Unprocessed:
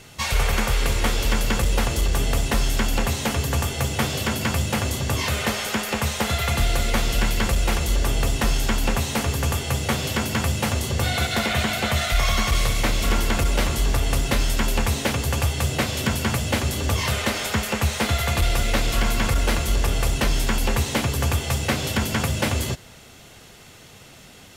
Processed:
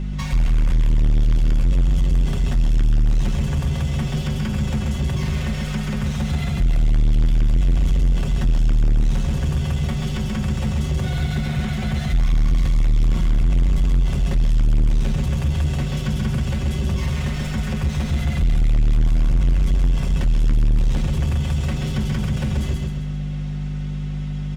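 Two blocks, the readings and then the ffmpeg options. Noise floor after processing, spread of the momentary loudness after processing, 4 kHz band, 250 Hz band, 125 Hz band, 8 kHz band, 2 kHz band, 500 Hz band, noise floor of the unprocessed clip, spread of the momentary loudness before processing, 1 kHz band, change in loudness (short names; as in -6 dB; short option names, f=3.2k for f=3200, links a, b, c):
-26 dBFS, 4 LU, -10.0 dB, +2.0 dB, +4.5 dB, -13.0 dB, -9.5 dB, -7.5 dB, -46 dBFS, 2 LU, -10.0 dB, +1.0 dB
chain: -filter_complex "[0:a]acrossover=split=270[a][b];[b]adynamicsmooth=sensitivity=5:basefreq=4.2k[c];[a][c]amix=inputs=2:normalize=0,highshelf=f=11k:g=3,acrossover=split=220[d][e];[e]acompressor=threshold=-35dB:ratio=5[f];[d][f]amix=inputs=2:normalize=0,lowshelf=f=100:g=10,aeval=exprs='val(0)+0.0631*(sin(2*PI*50*n/s)+sin(2*PI*2*50*n/s)/2+sin(2*PI*3*50*n/s)/3+sin(2*PI*4*50*n/s)/4+sin(2*PI*5*50*n/s)/5)':c=same,bandreject=f=4.3k:w=24,aecho=1:1:5.4:0.61,asplit=2[g][h];[h]aecho=0:1:133|266|399|532|665:0.668|0.287|0.124|0.0531|0.0228[i];[g][i]amix=inputs=2:normalize=0,asoftclip=type=tanh:threshold=-13dB"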